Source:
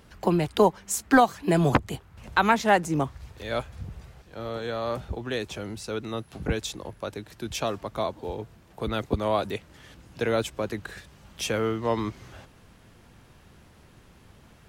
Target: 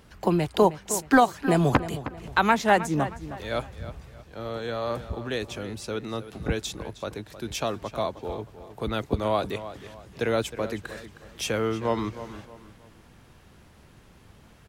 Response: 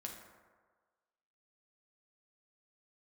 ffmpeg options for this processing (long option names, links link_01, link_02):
-filter_complex "[0:a]asplit=2[link_01][link_02];[link_02]adelay=313,lowpass=frequency=4200:poles=1,volume=-13dB,asplit=2[link_03][link_04];[link_04]adelay=313,lowpass=frequency=4200:poles=1,volume=0.35,asplit=2[link_05][link_06];[link_06]adelay=313,lowpass=frequency=4200:poles=1,volume=0.35[link_07];[link_01][link_03][link_05][link_07]amix=inputs=4:normalize=0"